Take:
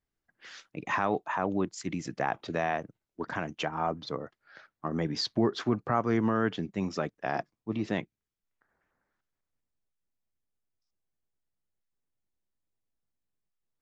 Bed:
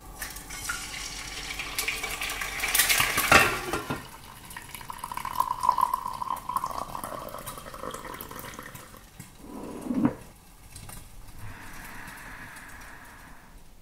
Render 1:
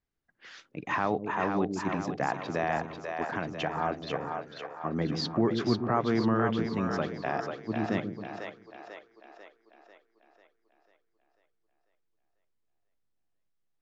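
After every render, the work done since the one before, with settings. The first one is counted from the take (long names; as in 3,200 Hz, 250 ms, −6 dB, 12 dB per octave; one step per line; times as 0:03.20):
high-frequency loss of the air 70 metres
echo with a time of its own for lows and highs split 420 Hz, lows 135 ms, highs 494 ms, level −5 dB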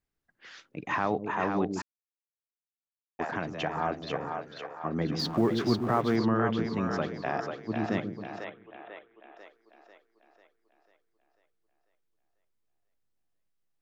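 0:01.82–0:03.19: silence
0:05.19–0:06.16: mu-law and A-law mismatch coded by mu
0:08.44–0:09.37: bad sample-rate conversion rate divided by 6×, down none, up filtered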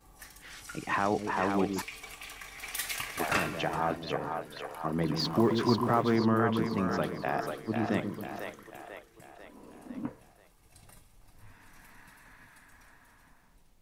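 mix in bed −13 dB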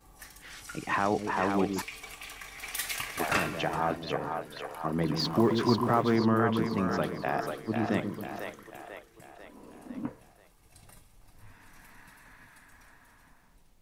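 level +1 dB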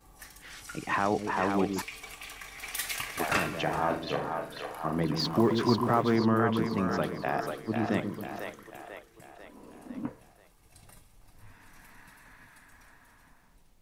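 0:03.63–0:05.00: flutter between parallel walls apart 6.8 metres, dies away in 0.35 s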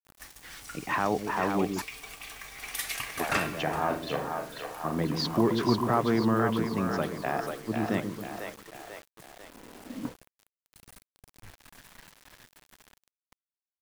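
bit reduction 8 bits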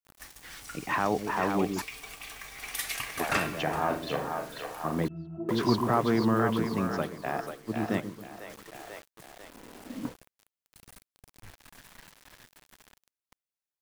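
0:05.08–0:05.49: resonances in every octave E, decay 0.38 s
0:06.86–0:08.50: expander for the loud parts, over −41 dBFS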